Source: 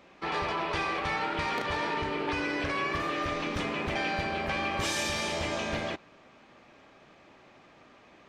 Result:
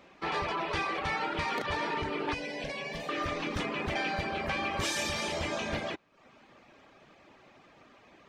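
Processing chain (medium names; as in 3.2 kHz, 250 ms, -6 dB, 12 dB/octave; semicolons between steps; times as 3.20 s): reverb removal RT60 0.58 s; 2.34–3.09 s: static phaser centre 340 Hz, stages 6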